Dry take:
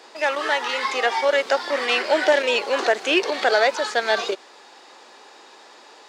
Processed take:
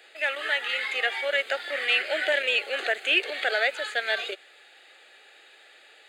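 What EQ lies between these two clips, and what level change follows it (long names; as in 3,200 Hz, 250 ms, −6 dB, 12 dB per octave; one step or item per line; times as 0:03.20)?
high-pass filter 700 Hz 12 dB per octave
phaser with its sweep stopped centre 2,400 Hz, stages 4
0.0 dB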